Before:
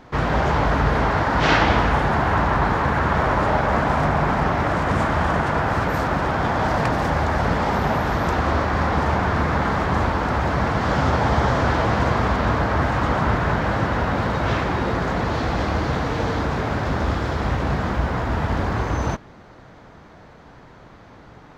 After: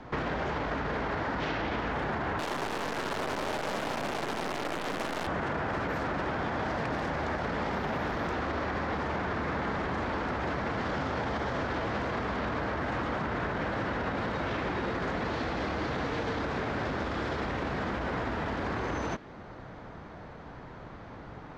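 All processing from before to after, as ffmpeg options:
ffmpeg -i in.wav -filter_complex "[0:a]asettb=1/sr,asplit=3[link_01][link_02][link_03];[link_01]atrim=end=2.394[link_04];[link_02]atrim=start=2.39:end=5.27,asetpts=PTS-STARTPTS,afade=type=in:duration=0.004:curve=qsin,afade=type=out:start_time=2.876:duration=0.004:curve=qsin,highpass=280,acrusher=bits=4:dc=4:mix=0:aa=0.000001[link_05];[link_03]atrim=start=5.266[link_06];[link_04][link_05]acrossfade=duration=0.004:curve1=hsin:curve2=qsin[link_07];[link_07][link_06]acrossfade=duration=0.004:curve1=qsin:curve2=hsin,aemphasis=mode=reproduction:type=50fm,alimiter=limit=-16.5dB:level=0:latency=1:release=31,acrossover=split=220|590|1500[link_08][link_09][link_10][link_11];[link_08]acompressor=threshold=-41dB:ratio=4[link_12];[link_09]acompressor=threshold=-34dB:ratio=4[link_13];[link_10]acompressor=threshold=-42dB:ratio=4[link_14];[link_11]acompressor=threshold=-37dB:ratio=4[link_15];[link_12][link_13][link_14][link_15]amix=inputs=4:normalize=0" out.wav

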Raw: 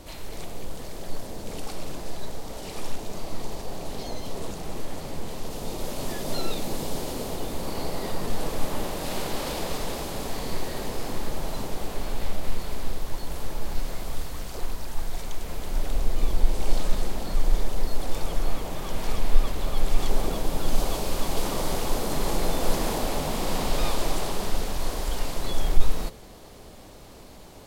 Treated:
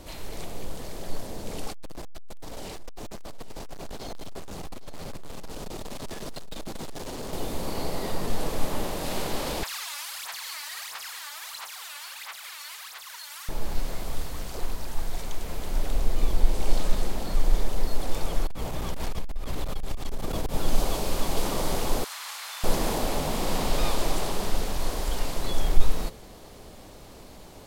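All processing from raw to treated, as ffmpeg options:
ffmpeg -i in.wav -filter_complex "[0:a]asettb=1/sr,asplit=3[link_01][link_02][link_03];[link_01]atrim=end=1.724[link_04];[link_02]atrim=start=1.72:end=7.33,asetpts=PTS-STARTPTS,afade=type=in:duration=0.004:curve=qsin,afade=type=out:start_time=5.606:duration=0.004:curve=qsin,acrossover=split=9700[link_05][link_06];[link_06]acompressor=threshold=-51dB:ratio=4:attack=1:release=60[link_07];[link_05][link_07]amix=inputs=2:normalize=0,volume=32.5dB,asoftclip=hard,volume=-32.5dB,aecho=1:1:814:0.178,atrim=end_sample=247401[link_08];[link_03]atrim=start=7.326[link_09];[link_04][link_08]acrossfade=duration=0.004:curve1=hsin:curve2=qsin[link_10];[link_10][link_09]acrossfade=duration=0.004:curve1=qsin:curve2=hsin,asettb=1/sr,asplit=3[link_11][link_12][link_13];[link_11]atrim=end=9.634[link_14];[link_12]atrim=start=9.63:end=13.49,asetpts=PTS-STARTPTS,afade=type=in:duration=0.004:curve=qsin,afade=type=out:start_time=3.856:duration=0.004:curve=qsin,highpass=frequency=1200:width=0.5412,highpass=frequency=1200:width=1.3066,aphaser=in_gain=1:out_gain=1:delay=3.5:decay=0.7:speed=1.5:type=sinusoidal[link_15];[link_13]atrim=start=13.486[link_16];[link_14][link_15]acrossfade=duration=0.004:curve1=hsin:curve2=qsin[link_17];[link_17][link_16]acrossfade=duration=0.004:curve1=qsin:curve2=hsin,asettb=1/sr,asplit=3[link_18][link_19][link_20];[link_18]atrim=end=18.464[link_21];[link_19]atrim=start=18.46:end=20.55,asetpts=PTS-STARTPTS,afade=type=in:duration=0.004:curve=qsin,afade=type=out:start_time=2.086:duration=0.004:curve=qsin,aeval=exprs='val(0)+0.02*(sin(2*PI*60*n/s)+sin(2*PI*2*60*n/s)/2+sin(2*PI*3*60*n/s)/3+sin(2*PI*4*60*n/s)/4+sin(2*PI*5*60*n/s)/5)':channel_layout=same,acompressor=threshold=-21dB:ratio=20:attack=3.2:release=140:knee=1:detection=peak,aeval=exprs='clip(val(0),-1,0.0531)':channel_layout=same[link_22];[link_20]atrim=start=20.546[link_23];[link_21][link_22]acrossfade=duration=0.004:curve1=hsin:curve2=qsin[link_24];[link_24][link_23]acrossfade=duration=0.004:curve1=qsin:curve2=hsin,asettb=1/sr,asplit=3[link_25][link_26][link_27];[link_25]atrim=end=22.044[link_28];[link_26]atrim=start=22.04:end=22.64,asetpts=PTS-STARTPTS,afade=type=in:duration=0.004:curve=qsin,afade=type=out:start_time=0.596:duration=0.004:curve=qsin,highpass=frequency=1200:width=0.5412,highpass=frequency=1200:width=1.3066,highshelf=frequency=6500:gain=-5.5[link_29];[link_27]atrim=start=22.636[link_30];[link_28][link_29]acrossfade=duration=0.004:curve1=hsin:curve2=qsin[link_31];[link_31][link_30]acrossfade=duration=0.004:curve1=qsin:curve2=hsin" out.wav

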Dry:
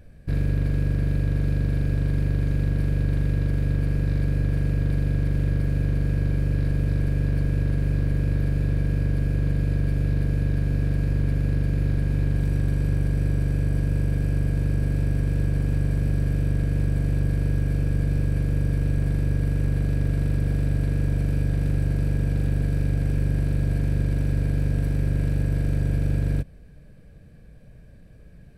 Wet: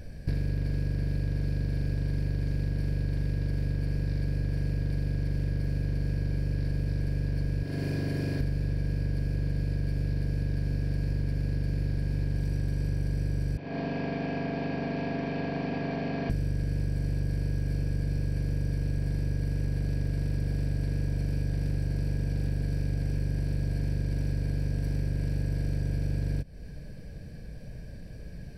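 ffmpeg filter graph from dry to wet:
ffmpeg -i in.wav -filter_complex "[0:a]asettb=1/sr,asplit=3[link_01][link_02][link_03];[link_01]atrim=end=7.634[link_04];[link_02]atrim=start=7.63:end=8.4,asetpts=PTS-STARTPTS,afade=type=in:duration=0.004:curve=qsin,afade=type=out:start_time=0.766:duration=0.004:curve=qsin,highpass=150,aecho=1:1:2.9:0.3,atrim=end_sample=33957[link_05];[link_03]atrim=start=8.396[link_06];[link_04][link_05]acrossfade=duration=0.004:curve1=hsin:curve2=qsin[link_07];[link_07][link_06]acrossfade=duration=0.004:curve1=qsin:curve2=hsin,asettb=1/sr,asplit=3[link_08][link_09][link_10];[link_08]atrim=end=13.574[link_11];[link_09]atrim=start=13.57:end=16.3,asetpts=PTS-STARTPTS,afade=type=in:duration=0.004:curve=qsin,afade=type=out:start_time=2.726:duration=0.004:curve=qsin,highpass=310,equalizer=frequency=480:width_type=q:width=4:gain=-7,equalizer=frequency=740:width_type=q:width=4:gain=8,equalizer=frequency=1100:width_type=q:width=4:gain=5,equalizer=frequency=1600:width_type=q:width=4:gain=-6,lowpass=frequency=3500:width=0.5412,lowpass=frequency=3500:width=1.3066,aecho=1:1:78:0.631,atrim=end_sample=120393[link_12];[link_10]atrim=start=16.296[link_13];[link_11][link_12]acrossfade=duration=0.004:curve1=hsin:curve2=qsin[link_14];[link_14][link_13]acrossfade=duration=0.004:curve1=qsin:curve2=hsin,superequalizer=10b=0.501:14b=2.51,acompressor=threshold=-32dB:ratio=6,volume=6dB" out.wav

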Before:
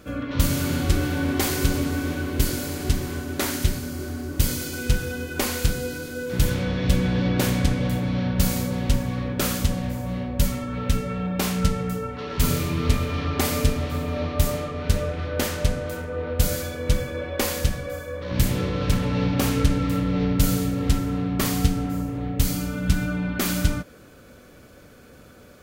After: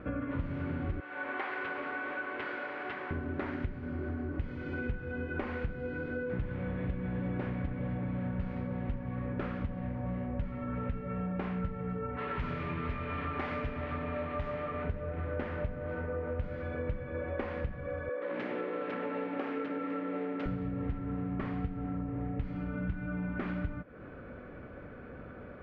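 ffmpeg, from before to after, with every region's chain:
ffmpeg -i in.wav -filter_complex "[0:a]asettb=1/sr,asplit=3[link_01][link_02][link_03];[link_01]atrim=end=1.004[link_04];[link_02]atrim=start=1:end=3.11,asetpts=PTS-STARTPTS,afade=type=in:duration=0.004:curve=qsin,afade=type=out:start_time=2.106:duration=0.004:curve=qsin,acrossover=split=4400[link_05][link_06];[link_06]acompressor=threshold=-45dB:ratio=4:attack=1:release=60[link_07];[link_05][link_07]amix=inputs=2:normalize=0,highpass=810,asplit=2[link_08][link_09];[link_09]adelay=27,volume=-14dB[link_10];[link_08][link_10]amix=inputs=2:normalize=0,atrim=end_sample=93051[link_11];[link_03]atrim=start=3.106[link_12];[link_04][link_11]acrossfade=duration=0.004:curve1=hsin:curve2=qsin[link_13];[link_13][link_12]acrossfade=duration=0.004:curve1=qsin:curve2=hsin,asettb=1/sr,asplit=3[link_14][link_15][link_16];[link_14]atrim=end=12.174[link_17];[link_15]atrim=start=12.17:end=14.84,asetpts=PTS-STARTPTS,afade=type=in:duration=0.004:curve=qsin,afade=type=out:start_time=2.666:duration=0.004:curve=qsin,tiltshelf=frequency=820:gain=-5.5,asoftclip=type=hard:threshold=-16dB,asplit=2[link_18][link_19];[link_19]adelay=17,volume=-13dB[link_20];[link_18][link_20]amix=inputs=2:normalize=0,atrim=end_sample=117747[link_21];[link_16]atrim=start=14.836[link_22];[link_17][link_21]acrossfade=duration=0.004:curve1=hsin:curve2=qsin[link_23];[link_23][link_22]acrossfade=duration=0.004:curve1=qsin:curve2=hsin,asettb=1/sr,asplit=3[link_24][link_25][link_26];[link_24]atrim=end=18.094[link_27];[link_25]atrim=start=18.09:end=20.46,asetpts=PTS-STARTPTS,afade=type=in:duration=0.004:curve=qsin,afade=type=out:start_time=2.366:duration=0.004:curve=qsin,highpass=frequency=300:width=0.5412,highpass=frequency=300:width=1.3066,equalizer=frequency=1000:width_type=o:width=0.21:gain=-4.5[link_28];[link_26]atrim=start=20.456[link_29];[link_27][link_28]acrossfade=duration=0.004:curve1=hsin:curve2=qsin[link_30];[link_30][link_29]acrossfade=duration=0.004:curve1=qsin:curve2=hsin,lowpass=frequency=2100:width=0.5412,lowpass=frequency=2100:width=1.3066,acompressor=threshold=-35dB:ratio=6,volume=2dB" out.wav

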